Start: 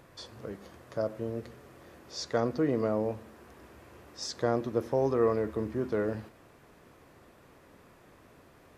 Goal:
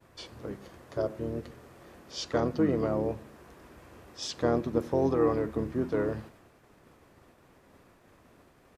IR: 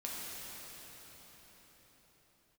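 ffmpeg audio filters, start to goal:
-filter_complex "[0:a]agate=range=-33dB:threshold=-53dB:ratio=3:detection=peak,asplit=2[link_01][link_02];[link_02]asetrate=29433,aresample=44100,atempo=1.49831,volume=-5dB[link_03];[link_01][link_03]amix=inputs=2:normalize=0"

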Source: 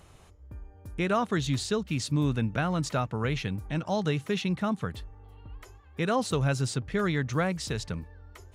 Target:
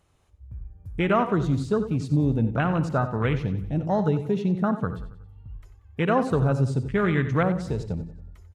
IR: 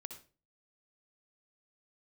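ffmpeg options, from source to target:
-filter_complex "[0:a]afwtdn=0.0224,aecho=1:1:92|184|276|368:0.2|0.0938|0.0441|0.0207,asplit=2[link_01][link_02];[1:a]atrim=start_sample=2205,atrim=end_sample=4410[link_03];[link_02][link_03]afir=irnorm=-1:irlink=0,volume=2.5dB[link_04];[link_01][link_04]amix=inputs=2:normalize=0"

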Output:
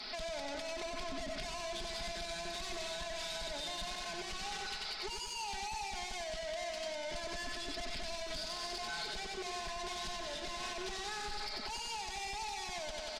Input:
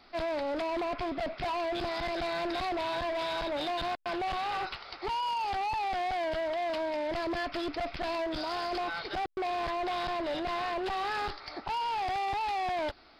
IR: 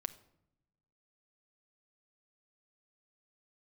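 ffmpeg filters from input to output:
-filter_complex "[0:a]equalizer=frequency=69:width=0.68:gain=-7,bandreject=frequency=1200:width=11,asoftclip=type=tanh:threshold=-36dB,equalizer=frequency=6500:width=0.51:gain=14.5,aecho=1:1:92|184|276|368|460|552|644:0.501|0.281|0.157|0.088|0.0493|0.0276|0.0155,acrossover=split=200[link_01][link_02];[link_02]acompressor=threshold=-45dB:ratio=3[link_03];[link_01][link_03]amix=inputs=2:normalize=0,aecho=1:1:4.7:0.78,alimiter=level_in=12.5dB:limit=-24dB:level=0:latency=1:release=71,volume=-12.5dB,volume=5.5dB"

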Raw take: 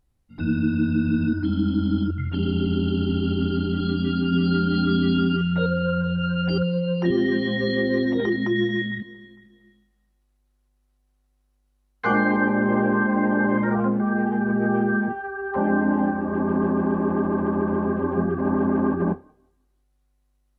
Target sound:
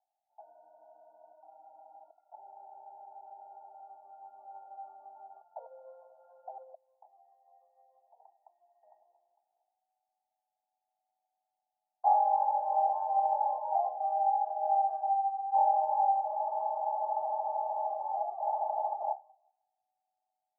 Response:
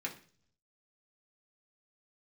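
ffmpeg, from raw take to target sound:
-filter_complex "[0:a]asettb=1/sr,asplit=3[link_01][link_02][link_03];[link_01]atrim=end=6.744[link_04];[link_02]atrim=start=6.74:end=8.83,asetpts=PTS-STARTPTS,afade=type=in:duration=0.004:curve=qsin,afade=type=out:start_time=2.086:duration=0.004:curve=qsin,aderivative[link_05];[link_03]atrim=start=8.826[link_06];[link_04][link_05]acrossfade=duration=0.004:curve1=hsin:curve2=qsin[link_07];[link_07][link_06]acrossfade=duration=0.004:curve1=qsin:curve2=hsin,asuperpass=centerf=750:order=8:qfactor=3.1,volume=5dB"

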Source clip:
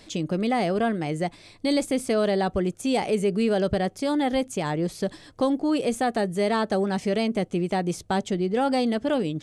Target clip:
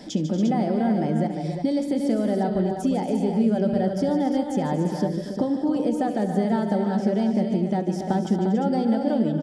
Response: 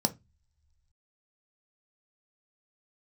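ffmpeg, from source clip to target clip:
-filter_complex "[0:a]acompressor=threshold=-35dB:ratio=5,aecho=1:1:70|144|154|235|280|350:0.141|0.237|0.224|0.224|0.355|0.422,asplit=2[link_01][link_02];[1:a]atrim=start_sample=2205,lowpass=4400[link_03];[link_02][link_03]afir=irnorm=-1:irlink=0,volume=-3.5dB[link_04];[link_01][link_04]amix=inputs=2:normalize=0"

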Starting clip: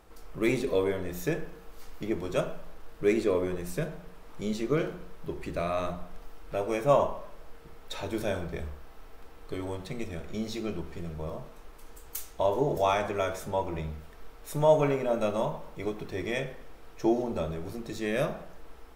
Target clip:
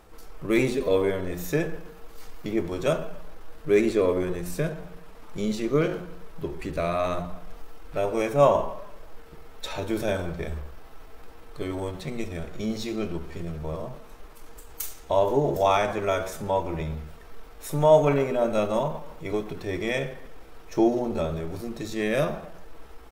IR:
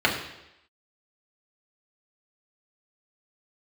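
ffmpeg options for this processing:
-filter_complex "[0:a]asplit=2[link_01][link_02];[link_02]adelay=110.8,volume=-30dB,highshelf=frequency=4000:gain=-2.49[link_03];[link_01][link_03]amix=inputs=2:normalize=0,atempo=0.82,volume=4dB"

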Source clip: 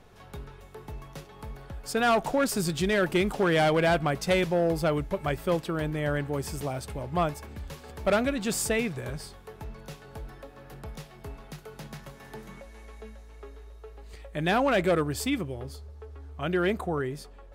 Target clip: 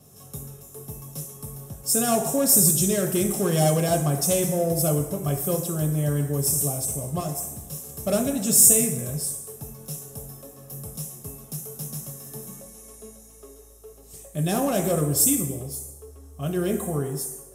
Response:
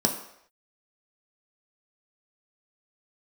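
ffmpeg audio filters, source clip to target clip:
-filter_complex "[0:a]asettb=1/sr,asplit=3[link_01][link_02][link_03];[link_01]atrim=end=7.204[link_04];[link_02]atrim=start=7.2:end=7.94,asetpts=PTS-STARTPTS,afade=type=in:duration=0.004:curve=qsin,afade=type=out:start_time=0.736:duration=0.004:curve=qsin,aeval=exprs='(tanh(28.2*val(0)+0.4)-tanh(0.4))/28.2':channel_layout=same[link_05];[link_03]atrim=start=7.936[link_06];[link_04][link_05]acrossfade=duration=0.004:curve1=hsin:curve2=qsin[link_07];[link_07][link_06]acrossfade=duration=0.004:curve1=qsin:curve2=hsin,aexciter=amount=11.8:drive=9.8:freq=6200[link_08];[1:a]atrim=start_sample=2205,asetrate=30429,aresample=44100[link_09];[link_08][link_09]afir=irnorm=-1:irlink=0,volume=-17dB"

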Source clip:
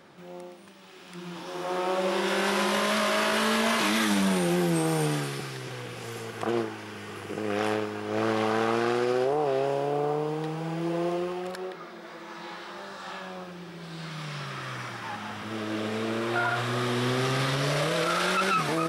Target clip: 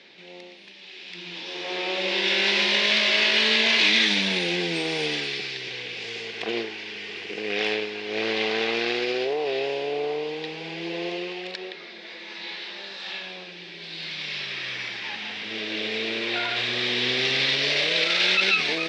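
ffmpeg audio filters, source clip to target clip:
ffmpeg -i in.wav -af "highpass=frequency=130:width=0.5412,highpass=frequency=130:width=1.3066,equalizer=frequency=150:width_type=q:width=4:gain=-8,equalizer=frequency=430:width_type=q:width=4:gain=6,equalizer=frequency=1200:width_type=q:width=4:gain=-5,equalizer=frequency=3100:width_type=q:width=4:gain=-5,lowpass=frequency=3800:width=0.5412,lowpass=frequency=3800:width=1.3066,aexciter=amount=11.2:drive=3.4:freq=2000,volume=-4dB" out.wav

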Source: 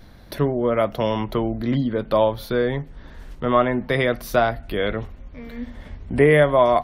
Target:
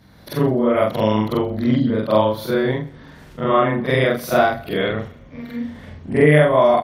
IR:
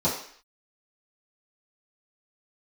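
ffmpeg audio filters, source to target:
-filter_complex "[0:a]afftfilt=real='re':imag='-im':win_size=4096:overlap=0.75,highpass=110,bass=frequency=250:gain=3,treble=frequency=4000:gain=1,dynaudnorm=framelen=140:gausssize=3:maxgain=6.5dB,asplit=2[link_01][link_02];[link_02]aecho=0:1:128|256|384:0.0794|0.0286|0.0103[link_03];[link_01][link_03]amix=inputs=2:normalize=0,volume=1dB"

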